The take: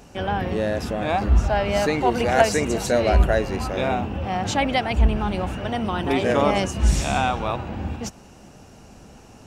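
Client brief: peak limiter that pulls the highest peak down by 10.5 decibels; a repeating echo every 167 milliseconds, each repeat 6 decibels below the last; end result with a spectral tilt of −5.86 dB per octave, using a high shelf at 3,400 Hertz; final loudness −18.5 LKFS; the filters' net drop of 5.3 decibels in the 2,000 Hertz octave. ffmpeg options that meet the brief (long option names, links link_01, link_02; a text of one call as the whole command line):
ffmpeg -i in.wav -af "equalizer=frequency=2000:width_type=o:gain=-5.5,highshelf=frequency=3400:gain=-5,alimiter=limit=-15.5dB:level=0:latency=1,aecho=1:1:167|334|501|668|835|1002:0.501|0.251|0.125|0.0626|0.0313|0.0157,volume=6dB" out.wav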